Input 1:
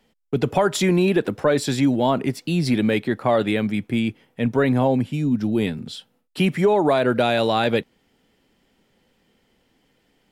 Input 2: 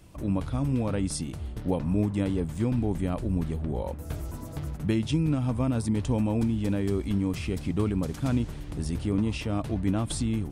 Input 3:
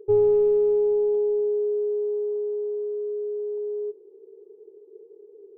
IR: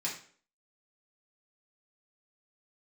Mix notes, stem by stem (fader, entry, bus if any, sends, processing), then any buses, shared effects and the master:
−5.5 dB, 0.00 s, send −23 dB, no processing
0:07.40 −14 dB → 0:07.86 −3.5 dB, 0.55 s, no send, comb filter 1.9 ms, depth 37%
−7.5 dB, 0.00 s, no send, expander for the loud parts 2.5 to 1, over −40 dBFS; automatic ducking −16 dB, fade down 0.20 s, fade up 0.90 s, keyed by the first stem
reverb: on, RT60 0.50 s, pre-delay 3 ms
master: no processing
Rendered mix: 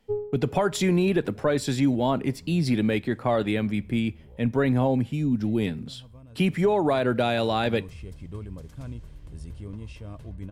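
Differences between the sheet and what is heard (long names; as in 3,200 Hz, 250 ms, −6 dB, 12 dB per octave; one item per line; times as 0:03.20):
stem 2 −14.0 dB → −24.5 dB
master: extra low-shelf EQ 130 Hz +8 dB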